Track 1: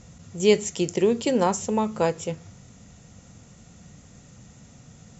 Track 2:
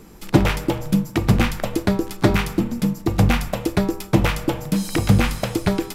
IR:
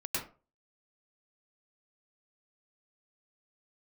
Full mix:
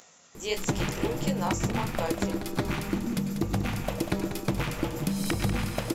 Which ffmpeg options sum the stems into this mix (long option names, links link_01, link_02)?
-filter_complex "[0:a]acompressor=mode=upward:threshold=-33dB:ratio=2.5,highpass=610,flanger=delay=16.5:depth=6.8:speed=1.5,volume=-3dB[link_01];[1:a]acompressor=threshold=-26dB:ratio=6,adelay=350,volume=-1.5dB,asplit=3[link_02][link_03][link_04];[link_03]volume=-11.5dB[link_05];[link_04]volume=-7.5dB[link_06];[2:a]atrim=start_sample=2205[link_07];[link_05][link_07]afir=irnorm=-1:irlink=0[link_08];[link_06]aecho=0:1:192|384|576|768|960|1152:1|0.43|0.185|0.0795|0.0342|0.0147[link_09];[link_01][link_02][link_08][link_09]amix=inputs=4:normalize=0"